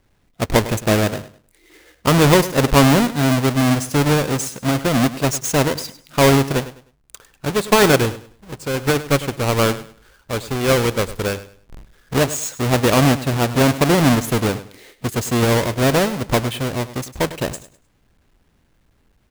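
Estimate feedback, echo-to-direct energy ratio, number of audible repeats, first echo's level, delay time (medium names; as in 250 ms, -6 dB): 27%, -14.5 dB, 2, -15.0 dB, 102 ms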